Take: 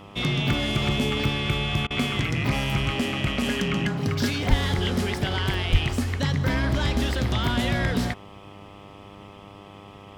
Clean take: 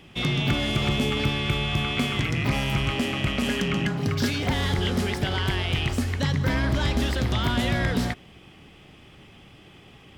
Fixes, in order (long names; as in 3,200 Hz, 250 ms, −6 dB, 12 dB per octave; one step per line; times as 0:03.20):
hum removal 100.2 Hz, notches 13
0:04.49–0:04.61: high-pass filter 140 Hz 24 dB per octave
0:05.71–0:05.83: high-pass filter 140 Hz 24 dB per octave
repair the gap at 0:00.53/0:01.24/0:05.54/0:07.14, 1.1 ms
repair the gap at 0:01.87, 34 ms